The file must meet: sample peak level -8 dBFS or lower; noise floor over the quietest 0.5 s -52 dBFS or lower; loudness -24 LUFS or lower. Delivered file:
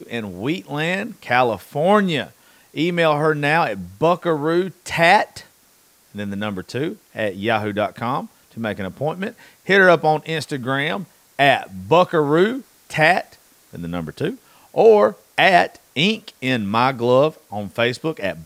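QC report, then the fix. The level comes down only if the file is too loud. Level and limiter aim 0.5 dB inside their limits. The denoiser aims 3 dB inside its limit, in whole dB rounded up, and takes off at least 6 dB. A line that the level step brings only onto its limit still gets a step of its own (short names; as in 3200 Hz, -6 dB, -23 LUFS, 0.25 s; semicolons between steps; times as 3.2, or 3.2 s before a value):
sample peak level -1.5 dBFS: fail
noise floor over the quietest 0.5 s -55 dBFS: OK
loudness -19.0 LUFS: fail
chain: gain -5.5 dB; limiter -8.5 dBFS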